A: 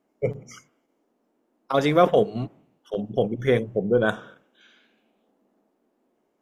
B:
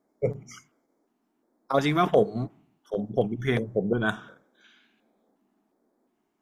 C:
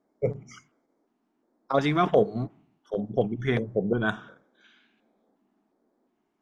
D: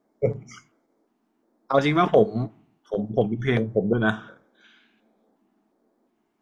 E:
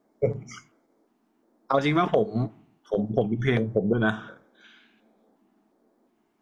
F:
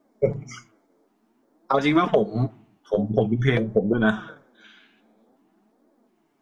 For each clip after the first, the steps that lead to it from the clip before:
LFO notch square 1.4 Hz 520–2800 Hz; gain -1 dB
air absorption 72 m
resonator 110 Hz, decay 0.18 s, harmonics all, mix 50%; gain +7 dB
compressor 4:1, threshold -21 dBFS, peak gain reduction 8.5 dB; gain +2 dB
flange 0.51 Hz, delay 3.1 ms, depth 8.4 ms, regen +32%; gain +6.5 dB

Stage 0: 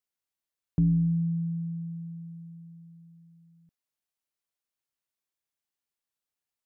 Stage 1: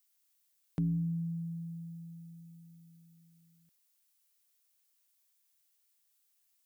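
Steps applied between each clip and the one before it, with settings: tilt +4 dB/oct; gain +2 dB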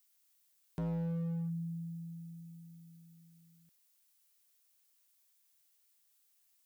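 overloaded stage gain 36 dB; gain +2 dB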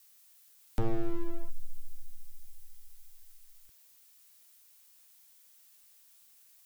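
frequency shift -160 Hz; gain +11.5 dB

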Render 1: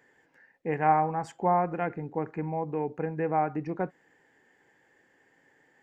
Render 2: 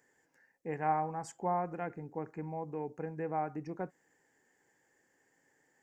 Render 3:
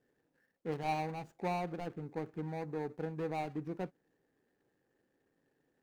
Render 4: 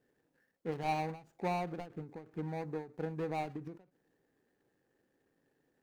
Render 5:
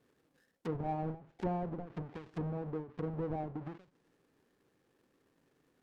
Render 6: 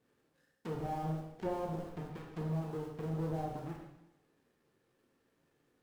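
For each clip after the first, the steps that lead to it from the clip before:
resonant high shelf 4700 Hz +9 dB, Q 1.5; gain -8 dB
median filter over 41 samples; gain +1.5 dB
ending taper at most 150 dB/s; gain +1 dB
half-waves squared off; treble ducked by the level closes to 770 Hz, closed at -35 dBFS; gain -1 dB
in parallel at -10.5 dB: Schmitt trigger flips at -49 dBFS; on the sum: plate-style reverb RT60 0.88 s, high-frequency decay 1×, DRR -1 dB; gain -4.5 dB

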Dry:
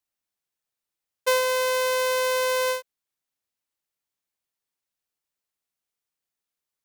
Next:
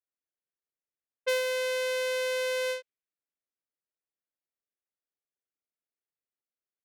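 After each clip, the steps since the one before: bell 960 Hz -14.5 dB 0.85 oct; low-pass opened by the level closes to 1400 Hz, open at -22.5 dBFS; tone controls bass -12 dB, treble -8 dB; gain -1.5 dB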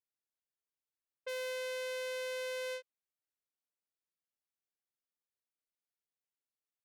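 limiter -27.5 dBFS, peak gain reduction 8.5 dB; gain -5.5 dB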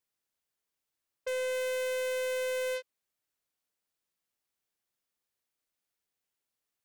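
wavefolder -36.5 dBFS; gain +7.5 dB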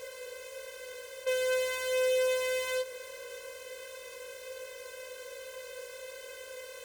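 per-bin compression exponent 0.2; HPF 91 Hz 6 dB/oct; chorus voices 4, 0.41 Hz, delay 15 ms, depth 1.7 ms; gain +5.5 dB

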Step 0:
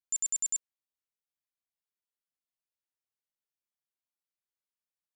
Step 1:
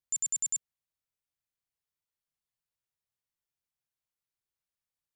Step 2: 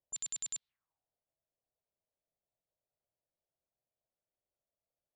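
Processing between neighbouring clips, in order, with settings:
resonant low shelf 180 Hz +7.5 dB, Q 1.5
envelope low-pass 620–3900 Hz up, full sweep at -34 dBFS; gain +1 dB

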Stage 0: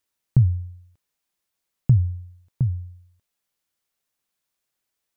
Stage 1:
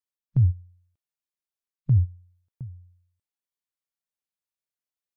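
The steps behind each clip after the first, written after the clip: spectral noise reduction 23 dB; reverse; compressor, threshold -27 dBFS, peak gain reduction 13.5 dB; reverse; dynamic EQ 110 Hz, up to +3 dB, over -38 dBFS; gain +7.5 dB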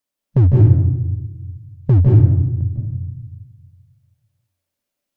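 small resonant body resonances 260/580 Hz, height 9 dB, ringing for 30 ms; hard clip -17 dBFS, distortion -14 dB; reverb RT60 1.0 s, pre-delay 0.152 s, DRR -1.5 dB; gain +8.5 dB

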